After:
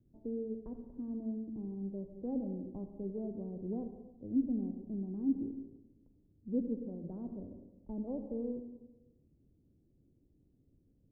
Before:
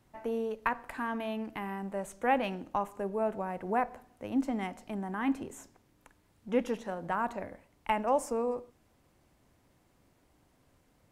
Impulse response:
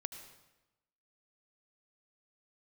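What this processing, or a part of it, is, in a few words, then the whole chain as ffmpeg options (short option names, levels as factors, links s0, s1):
next room: -filter_complex "[0:a]lowpass=f=370:w=0.5412,lowpass=f=370:w=1.3066[s0];[1:a]atrim=start_sample=2205[s1];[s0][s1]afir=irnorm=-1:irlink=0,volume=1.19"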